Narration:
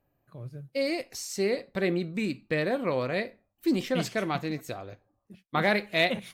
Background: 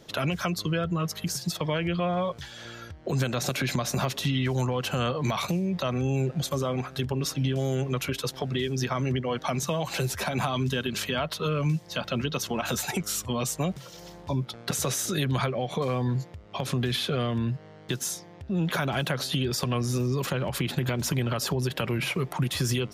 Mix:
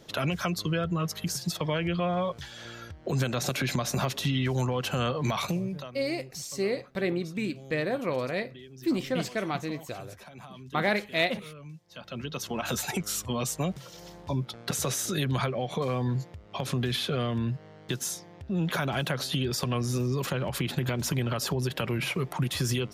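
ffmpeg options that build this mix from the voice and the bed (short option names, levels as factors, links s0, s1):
-filter_complex "[0:a]adelay=5200,volume=0.841[s0];[1:a]volume=6.68,afade=t=out:st=5.47:d=0.46:silence=0.125893,afade=t=in:st=11.87:d=0.84:silence=0.133352[s1];[s0][s1]amix=inputs=2:normalize=0"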